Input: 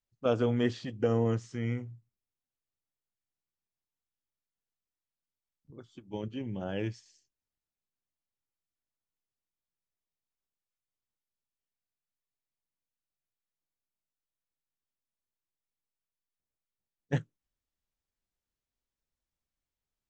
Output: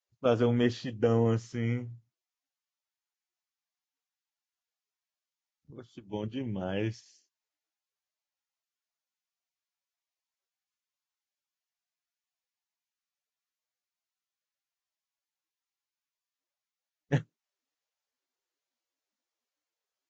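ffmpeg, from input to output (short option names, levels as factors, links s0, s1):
-af "volume=1.26" -ar 16000 -c:a libvorbis -b:a 48k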